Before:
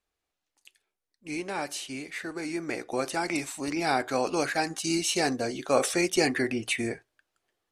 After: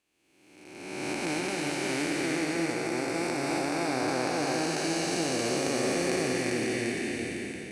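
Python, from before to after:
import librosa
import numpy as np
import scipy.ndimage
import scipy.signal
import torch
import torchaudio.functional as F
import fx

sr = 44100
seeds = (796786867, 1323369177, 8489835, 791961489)

y = fx.spec_blur(x, sr, span_ms=988.0)
y = fx.recorder_agc(y, sr, target_db=-23.5, rise_db_per_s=12.0, max_gain_db=30)
y = scipy.signal.sosfilt(scipy.signal.butter(2, 54.0, 'highpass', fs=sr, output='sos'), y)
y = y + 10.0 ** (-4.0 / 20.0) * np.pad(y, (int(346 * sr / 1000.0), 0))[:len(y)]
y = F.gain(torch.from_numpy(y), 2.5).numpy()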